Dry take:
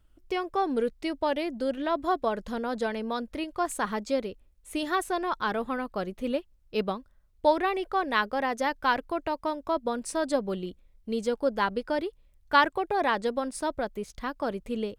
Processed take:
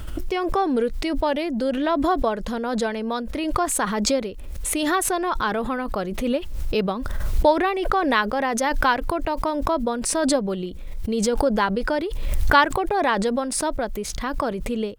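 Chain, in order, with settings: backwards sustainer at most 30 dB/s; gain +4.5 dB

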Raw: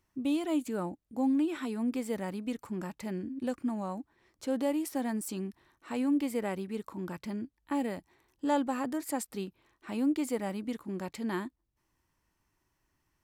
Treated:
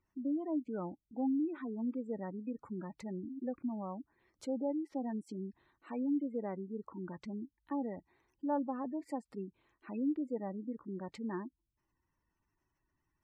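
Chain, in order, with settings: spectral gate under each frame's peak -20 dB strong; treble ducked by the level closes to 1300 Hz, closed at -28.5 dBFS; gain -5 dB

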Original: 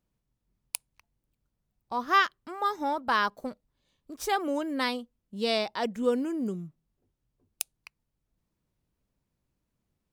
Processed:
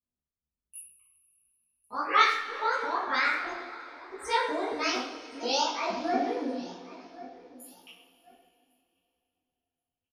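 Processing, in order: repeated pitch sweeps +8 st, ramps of 0.236 s; on a send: feedback echo 1.086 s, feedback 25%, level -19.5 dB; on the sum: loudest bins only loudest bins 64; gate -57 dBFS, range -14 dB; LPF 6200 Hz 12 dB/oct; high shelf 3200 Hz +9 dB; speakerphone echo 0.1 s, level -9 dB; two-slope reverb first 0.42 s, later 3.2 s, from -18 dB, DRR -8.5 dB; detuned doubles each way 49 cents; gain -5 dB

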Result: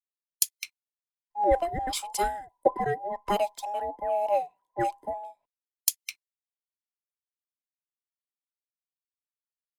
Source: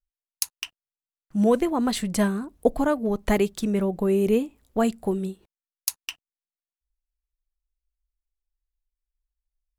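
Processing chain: band inversion scrambler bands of 1000 Hz; three-band expander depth 100%; gain -6.5 dB

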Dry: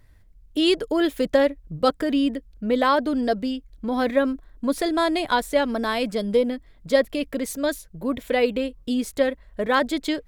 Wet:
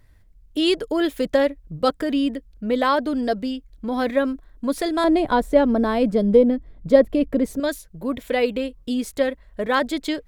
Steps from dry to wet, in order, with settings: 5.04–7.6 tilt shelf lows +8.5 dB, about 1100 Hz

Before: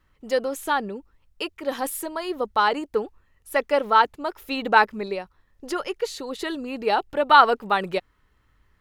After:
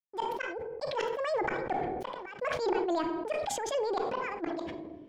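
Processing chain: HPF 92 Hz 12 dB/oct; gate -44 dBFS, range -46 dB; ten-band EQ 125 Hz +5 dB, 250 Hz +3 dB, 500 Hz -3 dB; transient shaper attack -7 dB, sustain +8 dB; flipped gate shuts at -18 dBFS, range -36 dB; tape spacing loss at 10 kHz 40 dB; shoebox room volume 3300 m³, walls furnished, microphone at 0.77 m; speed mistake 45 rpm record played at 78 rpm; sustainer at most 25 dB/s

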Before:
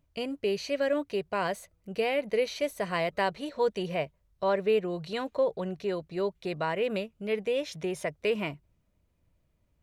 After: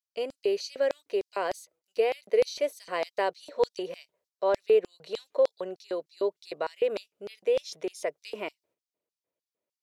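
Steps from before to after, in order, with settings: gate -60 dBFS, range -9 dB; LFO high-pass square 3.3 Hz 440–4800 Hz; gain -3 dB

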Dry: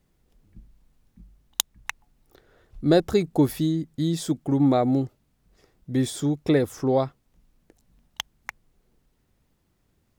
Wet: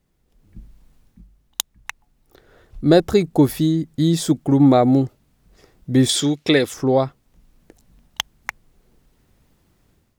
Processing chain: 6.09–6.74 weighting filter D; AGC gain up to 10 dB; gain -1 dB

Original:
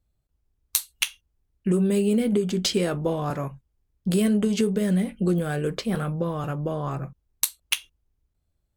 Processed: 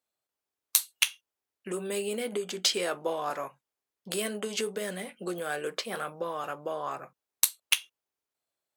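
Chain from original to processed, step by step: HPF 600 Hz 12 dB/oct

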